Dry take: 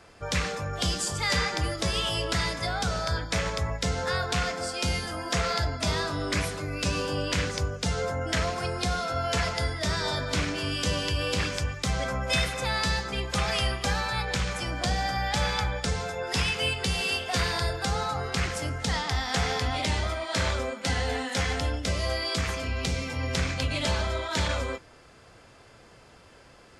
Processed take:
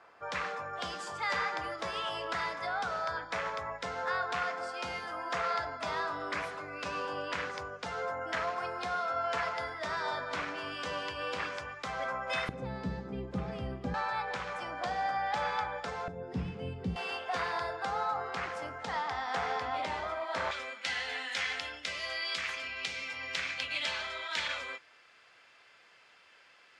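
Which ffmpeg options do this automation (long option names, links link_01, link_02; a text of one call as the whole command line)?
ffmpeg -i in.wav -af "asetnsamples=nb_out_samples=441:pad=0,asendcmd='12.49 bandpass f 240;13.94 bandpass f 960;16.08 bandpass f 200;16.96 bandpass f 970;20.51 bandpass f 2400',bandpass=frequency=1100:width_type=q:width=1.2:csg=0" out.wav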